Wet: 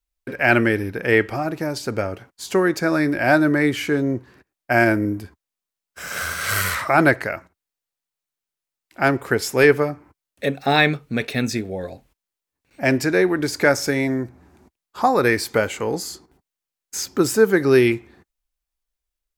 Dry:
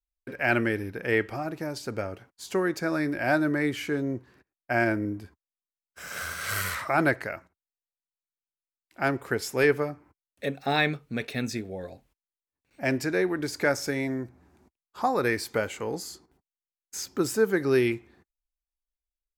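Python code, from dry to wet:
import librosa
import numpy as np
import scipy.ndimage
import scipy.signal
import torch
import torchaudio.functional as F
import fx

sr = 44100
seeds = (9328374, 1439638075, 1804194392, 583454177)

y = fx.high_shelf(x, sr, hz=9900.0, db=10.5, at=(4.71, 5.22))
y = y * librosa.db_to_amplitude(8.0)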